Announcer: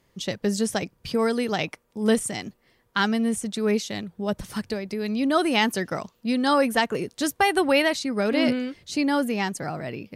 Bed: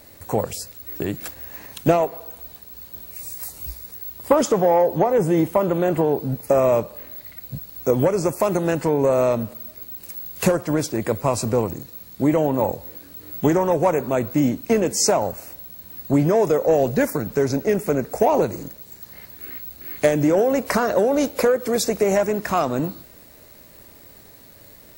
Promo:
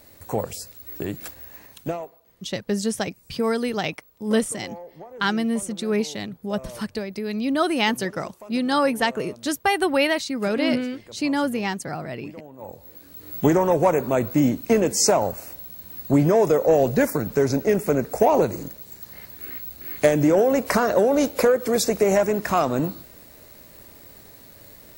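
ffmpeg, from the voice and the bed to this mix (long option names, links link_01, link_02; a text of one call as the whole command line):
ffmpeg -i stem1.wav -i stem2.wav -filter_complex "[0:a]adelay=2250,volume=0dB[link_01];[1:a]volume=19.5dB,afade=type=out:start_time=1.28:duration=0.93:silence=0.105925,afade=type=in:start_time=12.58:duration=0.81:silence=0.0707946[link_02];[link_01][link_02]amix=inputs=2:normalize=0" out.wav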